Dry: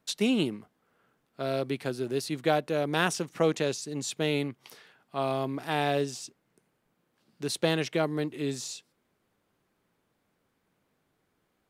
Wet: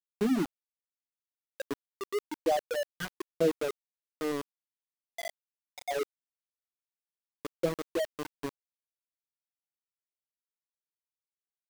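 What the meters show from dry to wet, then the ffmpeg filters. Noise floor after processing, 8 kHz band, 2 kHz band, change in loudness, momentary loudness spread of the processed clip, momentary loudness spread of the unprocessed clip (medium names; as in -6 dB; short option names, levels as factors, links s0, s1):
under -85 dBFS, -10.0 dB, -8.0 dB, -4.5 dB, 16 LU, 11 LU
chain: -af "bandreject=f=50:t=h:w=6,bandreject=f=100:t=h:w=6,bandreject=f=150:t=h:w=6,bandreject=f=200:t=h:w=6,bandreject=f=250:t=h:w=6,afftfilt=real='re*gte(hypot(re,im),0.282)':imag='im*gte(hypot(re,im),0.282)':win_size=1024:overlap=0.75,aeval=exprs='val(0)*gte(abs(val(0)),0.0282)':c=same"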